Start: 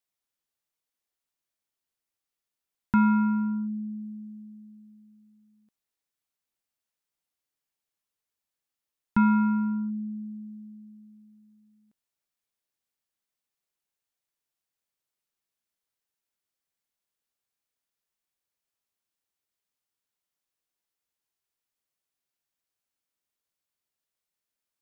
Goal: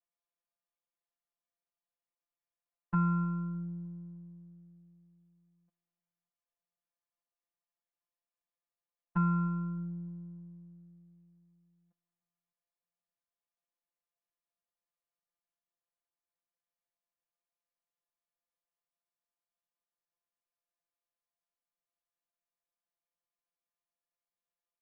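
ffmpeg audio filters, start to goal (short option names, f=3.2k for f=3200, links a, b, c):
-filter_complex "[0:a]lowpass=2.4k,equalizer=f=790:w=1.6:g=10,aecho=1:1:4.1:0.65,afftfilt=real='hypot(re,im)*cos(PI*b)':imag='0':win_size=1024:overlap=0.75,asplit=2[a][b];[b]adelay=305,lowpass=f=1.2k:p=1,volume=-23dB,asplit=2[c][d];[d]adelay=305,lowpass=f=1.2k:p=1,volume=0.53,asplit=2[e][f];[f]adelay=305,lowpass=f=1.2k:p=1,volume=0.53,asplit=2[g][h];[h]adelay=305,lowpass=f=1.2k:p=1,volume=0.53[i];[a][c][e][g][i]amix=inputs=5:normalize=0,volume=-7dB"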